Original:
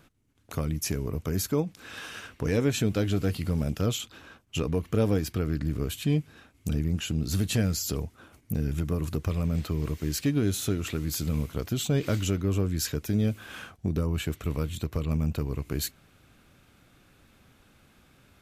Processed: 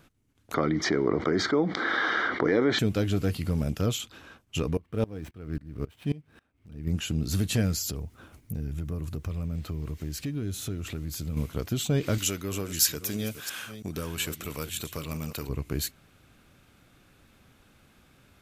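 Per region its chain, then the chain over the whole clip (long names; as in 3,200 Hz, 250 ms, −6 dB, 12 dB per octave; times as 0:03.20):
0:00.54–0:02.79: Butterworth band-reject 2,600 Hz, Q 3.4 + loudspeaker in its box 270–3,800 Hz, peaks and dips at 340 Hz +8 dB, 760 Hz +4 dB, 1,300 Hz +6 dB, 2,000 Hz +6 dB, 3,000 Hz −5 dB + envelope flattener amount 70%
0:04.77–0:06.87: running median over 9 samples + notch filter 6,900 Hz + tremolo with a ramp in dB swelling 3.7 Hz, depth 23 dB
0:07.90–0:11.37: low-shelf EQ 150 Hz +7.5 dB + downward compressor 2 to 1, threshold −36 dBFS + bit-depth reduction 12 bits, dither none
0:12.18–0:15.49: delay that plays each chunk backwards 329 ms, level −11 dB + spectral tilt +3 dB per octave
whole clip: no processing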